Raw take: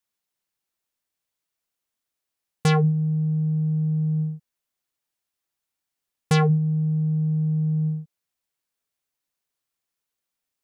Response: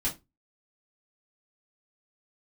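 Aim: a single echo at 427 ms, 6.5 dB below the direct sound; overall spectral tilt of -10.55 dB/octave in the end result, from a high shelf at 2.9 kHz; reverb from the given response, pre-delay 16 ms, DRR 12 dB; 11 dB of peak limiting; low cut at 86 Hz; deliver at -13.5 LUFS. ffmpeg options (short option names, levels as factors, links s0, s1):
-filter_complex "[0:a]highpass=86,highshelf=f=2900:g=-5,alimiter=limit=0.106:level=0:latency=1,aecho=1:1:427:0.473,asplit=2[s0][s1];[1:a]atrim=start_sample=2205,adelay=16[s2];[s1][s2]afir=irnorm=-1:irlink=0,volume=0.133[s3];[s0][s3]amix=inputs=2:normalize=0,volume=5.62"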